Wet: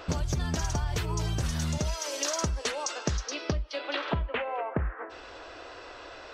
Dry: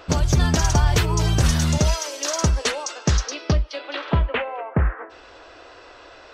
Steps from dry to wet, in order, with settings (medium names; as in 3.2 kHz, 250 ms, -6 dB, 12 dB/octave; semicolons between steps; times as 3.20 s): compression, threshold -27 dBFS, peak gain reduction 14 dB